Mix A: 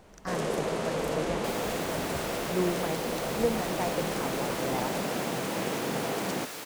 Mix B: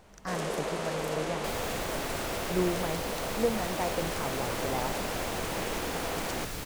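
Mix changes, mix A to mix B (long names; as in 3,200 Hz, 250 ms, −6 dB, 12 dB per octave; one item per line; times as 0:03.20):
first sound: add low-shelf EQ 330 Hz −10.5 dB
second sound: remove high-pass filter 300 Hz 12 dB per octave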